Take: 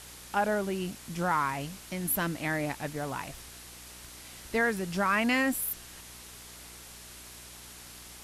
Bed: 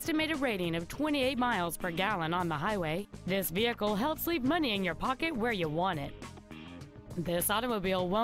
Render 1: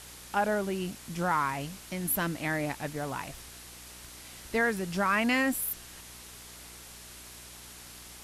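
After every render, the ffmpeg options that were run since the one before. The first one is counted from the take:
-af anull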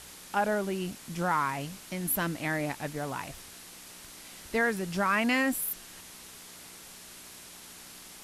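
-af "bandreject=f=60:t=h:w=4,bandreject=f=120:t=h:w=4"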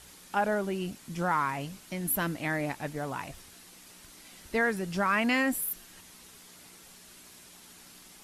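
-af "afftdn=nr=6:nf=-49"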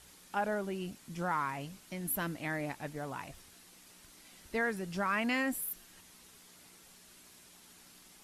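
-af "volume=-5.5dB"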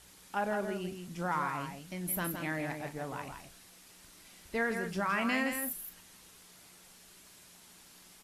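-filter_complex "[0:a]asplit=2[a][b];[b]adelay=39,volume=-12.5dB[c];[a][c]amix=inputs=2:normalize=0,asplit=2[d][e];[e]aecho=0:1:165:0.473[f];[d][f]amix=inputs=2:normalize=0"

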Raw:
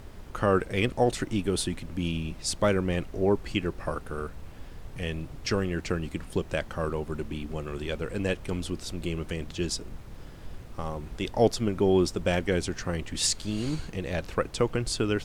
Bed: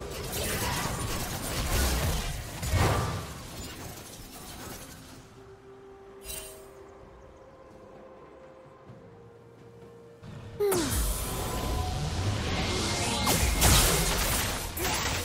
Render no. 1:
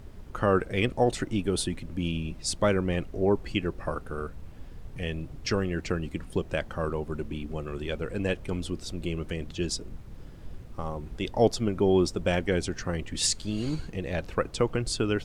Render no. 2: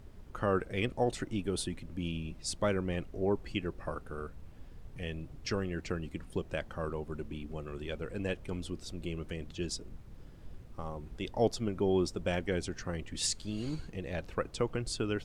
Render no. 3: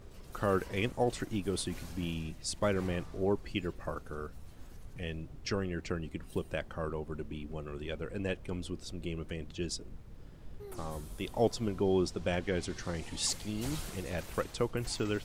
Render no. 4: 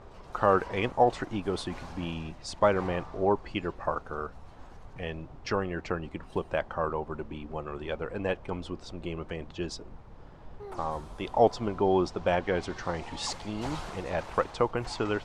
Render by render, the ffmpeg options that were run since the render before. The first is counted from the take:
-af "afftdn=nr=6:nf=-45"
-af "volume=-6.5dB"
-filter_complex "[1:a]volume=-21.5dB[a];[0:a][a]amix=inputs=2:normalize=0"
-af "lowpass=5.8k,equalizer=f=890:t=o:w=1.5:g=13.5"

